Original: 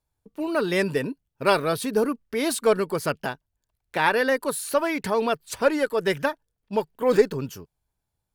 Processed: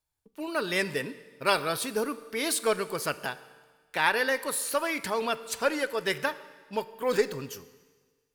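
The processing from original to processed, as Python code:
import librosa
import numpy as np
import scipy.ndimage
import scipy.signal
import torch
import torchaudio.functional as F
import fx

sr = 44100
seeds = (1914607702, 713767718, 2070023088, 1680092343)

y = fx.tilt_shelf(x, sr, db=-5.0, hz=970.0)
y = fx.comb_fb(y, sr, f0_hz=150.0, decay_s=1.9, harmonics='all', damping=0.0, mix_pct=40)
y = fx.rev_plate(y, sr, seeds[0], rt60_s=1.4, hf_ratio=0.95, predelay_ms=0, drr_db=14.0)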